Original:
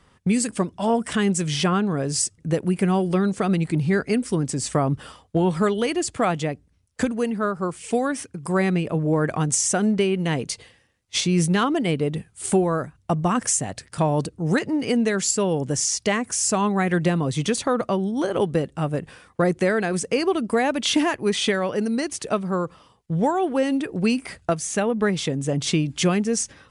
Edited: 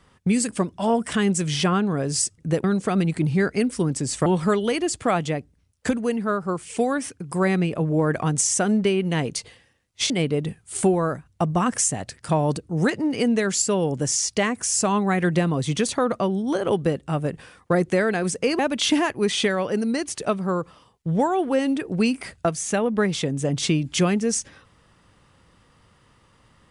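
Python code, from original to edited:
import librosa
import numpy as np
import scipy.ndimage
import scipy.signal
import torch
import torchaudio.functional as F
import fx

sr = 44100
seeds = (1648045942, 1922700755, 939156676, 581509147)

y = fx.edit(x, sr, fx.cut(start_s=2.64, length_s=0.53),
    fx.cut(start_s=4.79, length_s=0.61),
    fx.cut(start_s=11.24, length_s=0.55),
    fx.cut(start_s=20.28, length_s=0.35), tone=tone)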